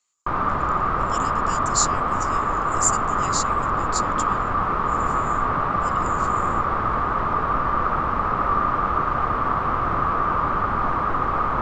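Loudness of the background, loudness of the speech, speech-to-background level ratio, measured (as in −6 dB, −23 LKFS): −22.0 LKFS, −28.0 LKFS, −6.0 dB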